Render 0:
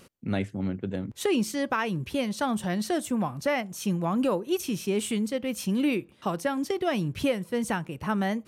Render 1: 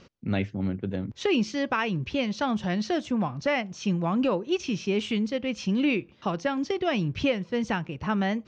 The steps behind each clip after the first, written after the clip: dynamic EQ 2600 Hz, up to +5 dB, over -47 dBFS, Q 2.4; steep low-pass 6200 Hz 48 dB/oct; low shelf 120 Hz +4.5 dB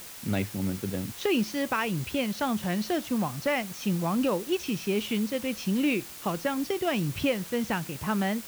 added noise white -42 dBFS; gain -1.5 dB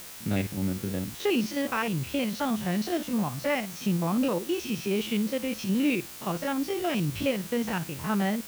stepped spectrum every 50 ms; gain +1.5 dB

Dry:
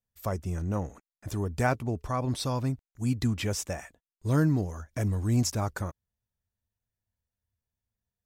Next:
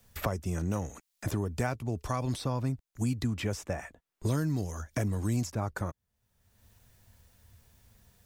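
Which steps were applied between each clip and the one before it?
three-band squash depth 100%; gain -3 dB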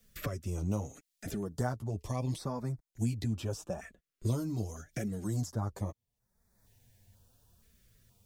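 flange 0.78 Hz, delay 4.2 ms, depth 6.2 ms, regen -3%; stepped notch 2.1 Hz 850–2900 Hz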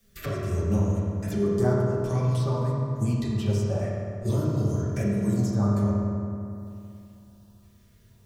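reverb RT60 2.6 s, pre-delay 3 ms, DRR -6.5 dB; gain +1 dB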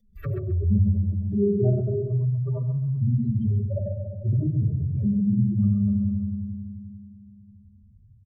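spectral contrast raised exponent 2.9; on a send: feedback echo 0.132 s, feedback 18%, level -9 dB; on the sum: gain +3 dB

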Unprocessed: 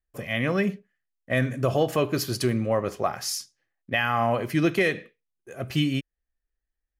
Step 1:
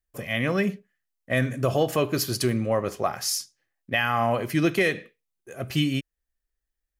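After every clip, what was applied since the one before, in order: high shelf 5300 Hz +5 dB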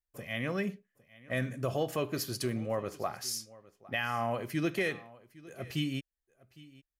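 echo 0.808 s -21 dB; gain -9 dB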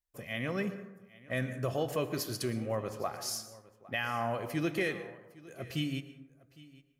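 plate-style reverb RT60 1 s, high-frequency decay 0.35×, pre-delay 0.1 s, DRR 11 dB; gain -1 dB

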